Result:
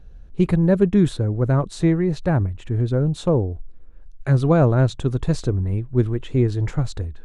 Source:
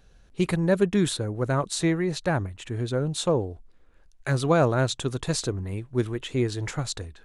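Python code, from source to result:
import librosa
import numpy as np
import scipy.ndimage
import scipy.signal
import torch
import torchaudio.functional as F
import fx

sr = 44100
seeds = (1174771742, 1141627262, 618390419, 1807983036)

y = fx.tilt_eq(x, sr, slope=-3.0)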